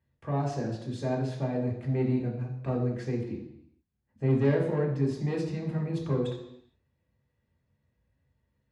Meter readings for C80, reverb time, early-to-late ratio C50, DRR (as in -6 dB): 9.0 dB, 0.80 s, 6.5 dB, -2.0 dB